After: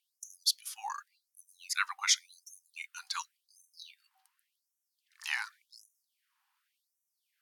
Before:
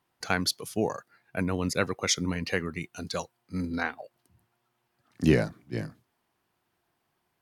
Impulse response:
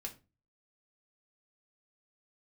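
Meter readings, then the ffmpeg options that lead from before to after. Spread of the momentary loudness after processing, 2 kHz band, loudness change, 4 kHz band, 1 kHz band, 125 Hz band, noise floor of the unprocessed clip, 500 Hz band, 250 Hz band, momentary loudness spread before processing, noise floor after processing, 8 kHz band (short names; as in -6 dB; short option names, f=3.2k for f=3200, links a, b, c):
23 LU, -4.5 dB, -4.0 dB, -0.5 dB, -5.0 dB, under -40 dB, -77 dBFS, under -40 dB, under -40 dB, 12 LU, -85 dBFS, 0.0 dB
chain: -af "bandreject=f=50.99:t=h:w=4,bandreject=f=101.98:t=h:w=4,bandreject=f=152.97:t=h:w=4,bandreject=f=203.96:t=h:w=4,bandreject=f=254.95:t=h:w=4,bandreject=f=305.94:t=h:w=4,bandreject=f=356.93:t=h:w=4,bandreject=f=407.92:t=h:w=4,bandreject=f=458.91:t=h:w=4,bandreject=f=509.9:t=h:w=4,bandreject=f=560.89:t=h:w=4,bandreject=f=611.88:t=h:w=4,bandreject=f=662.87:t=h:w=4,bandreject=f=713.86:t=h:w=4,bandreject=f=764.85:t=h:w=4,afftfilt=real='re*gte(b*sr/1024,740*pow(5600/740,0.5+0.5*sin(2*PI*0.89*pts/sr)))':imag='im*gte(b*sr/1024,740*pow(5600/740,0.5+0.5*sin(2*PI*0.89*pts/sr)))':win_size=1024:overlap=0.75"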